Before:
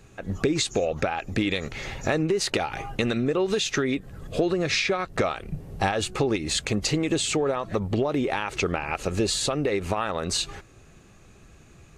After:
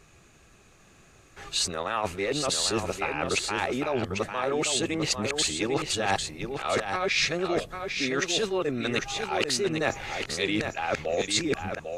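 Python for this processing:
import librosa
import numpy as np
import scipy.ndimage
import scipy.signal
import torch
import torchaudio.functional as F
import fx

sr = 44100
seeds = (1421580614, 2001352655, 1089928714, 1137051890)

y = x[::-1].copy()
y = fx.low_shelf(y, sr, hz=380.0, db=-8.5)
y = y + 10.0 ** (-6.5 / 20.0) * np.pad(y, (int(798 * sr / 1000.0), 0))[:len(y)]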